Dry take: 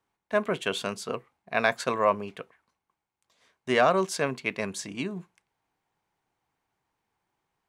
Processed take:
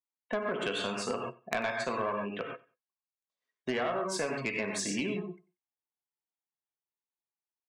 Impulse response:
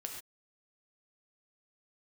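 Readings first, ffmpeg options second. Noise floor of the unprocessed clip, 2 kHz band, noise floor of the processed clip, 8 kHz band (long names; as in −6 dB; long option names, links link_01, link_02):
below −85 dBFS, −5.0 dB, below −85 dBFS, −0.5 dB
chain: -filter_complex "[0:a]aeval=exprs='(tanh(7.08*val(0)+0.6)-tanh(0.6))/7.08':channel_layout=same[link_01];[1:a]atrim=start_sample=2205[link_02];[link_01][link_02]afir=irnorm=-1:irlink=0,acompressor=threshold=-41dB:ratio=8,afftdn=noise_reduction=35:noise_floor=-57,highpass=160,acontrast=27,aeval=exprs='0.1*(cos(1*acos(clip(val(0)/0.1,-1,1)))-cos(1*PI/2))+0.0224*(cos(3*acos(clip(val(0)/0.1,-1,1)))-cos(3*PI/2))+0.02*(cos(5*acos(clip(val(0)/0.1,-1,1)))-cos(5*PI/2))':channel_layout=same,aecho=1:1:93|186:0.0794|0.0183,volume=6dB"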